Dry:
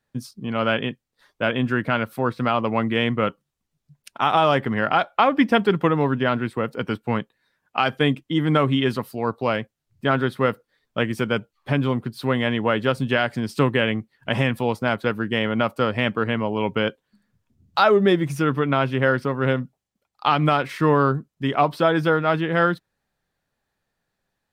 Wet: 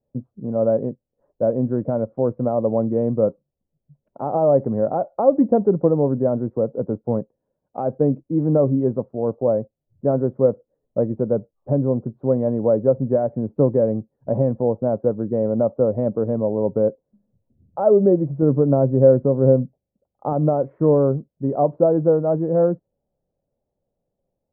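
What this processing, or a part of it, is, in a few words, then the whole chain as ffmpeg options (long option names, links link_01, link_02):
under water: -filter_complex "[0:a]asettb=1/sr,asplit=3[link_01][link_02][link_03];[link_01]atrim=end=18.424[link_04];[link_02]atrim=start=18.42:end=20.33,asetpts=PTS-STARTPTS,afade=type=in:duration=0.004:curve=qsin,afade=type=out:start_time=1.906:duration=0.004:curve=qsin,lowshelf=frequency=450:gain=5[link_05];[link_03]atrim=start=20.326[link_06];[link_04][link_05]acrossfade=duration=0.004:curve1=hsin:curve2=qsin[link_07];[link_07][link_06]acrossfade=duration=0.004:curve1=qsin:curve2=hsin,lowpass=frequency=680:width=0.5412,lowpass=frequency=680:width=1.3066,equalizer=frequency=550:width_type=o:width=0.42:gain=8,volume=1dB"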